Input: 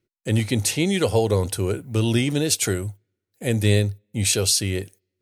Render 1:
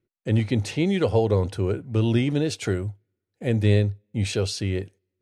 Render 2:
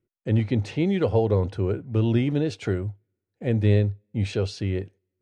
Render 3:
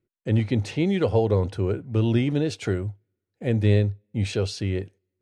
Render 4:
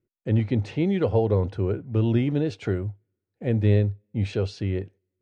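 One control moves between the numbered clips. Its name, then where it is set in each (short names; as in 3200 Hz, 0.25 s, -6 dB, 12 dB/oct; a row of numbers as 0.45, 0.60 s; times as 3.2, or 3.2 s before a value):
tape spacing loss, at 10 kHz: 21, 37, 29, 46 dB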